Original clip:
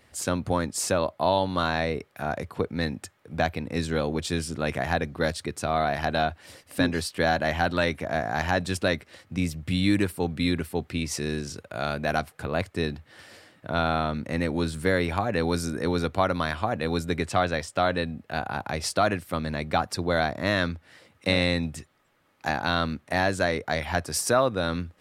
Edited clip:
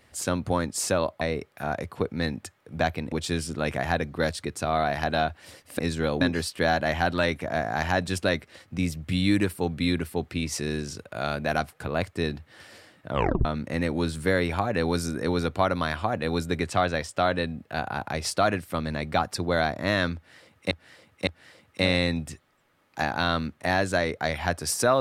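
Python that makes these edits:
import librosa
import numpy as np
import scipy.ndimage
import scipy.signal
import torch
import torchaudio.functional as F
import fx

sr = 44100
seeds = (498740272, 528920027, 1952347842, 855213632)

y = fx.edit(x, sr, fx.cut(start_s=1.21, length_s=0.59),
    fx.move(start_s=3.71, length_s=0.42, to_s=6.8),
    fx.tape_stop(start_s=13.7, length_s=0.34),
    fx.repeat(start_s=20.74, length_s=0.56, count=3), tone=tone)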